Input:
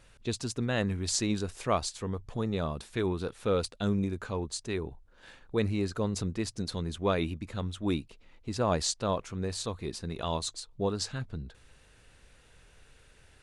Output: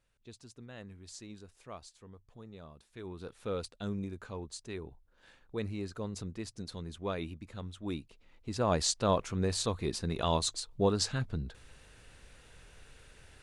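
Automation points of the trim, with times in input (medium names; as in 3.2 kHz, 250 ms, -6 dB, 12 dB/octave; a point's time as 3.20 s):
2.86 s -18.5 dB
3.33 s -8 dB
7.86 s -8 dB
9.17 s +2.5 dB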